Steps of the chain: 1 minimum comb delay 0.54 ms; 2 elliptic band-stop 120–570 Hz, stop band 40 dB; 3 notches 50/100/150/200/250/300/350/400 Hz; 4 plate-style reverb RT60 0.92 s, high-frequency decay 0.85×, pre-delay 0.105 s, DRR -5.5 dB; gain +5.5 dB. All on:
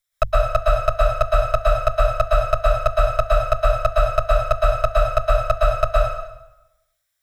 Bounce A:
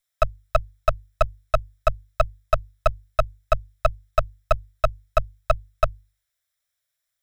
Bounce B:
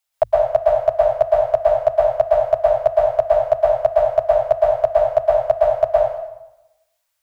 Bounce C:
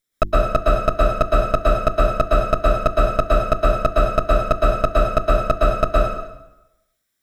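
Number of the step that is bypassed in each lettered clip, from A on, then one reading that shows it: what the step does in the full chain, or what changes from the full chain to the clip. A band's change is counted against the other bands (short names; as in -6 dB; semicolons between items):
4, crest factor change +6.5 dB; 1, 500 Hz band +14.0 dB; 2, crest factor change -1.5 dB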